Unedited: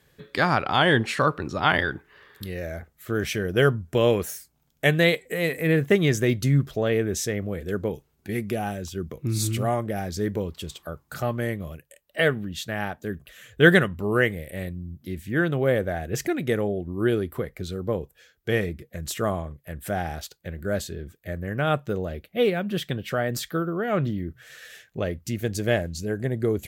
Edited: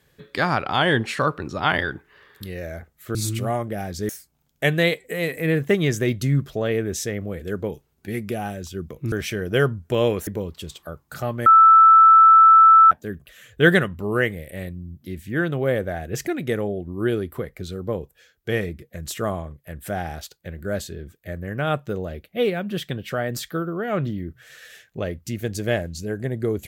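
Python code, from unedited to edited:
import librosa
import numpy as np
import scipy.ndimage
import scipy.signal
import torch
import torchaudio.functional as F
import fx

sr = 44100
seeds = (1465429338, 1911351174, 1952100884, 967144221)

y = fx.edit(x, sr, fx.swap(start_s=3.15, length_s=1.15, other_s=9.33, other_length_s=0.94),
    fx.bleep(start_s=11.46, length_s=1.45, hz=1320.0, db=-7.5), tone=tone)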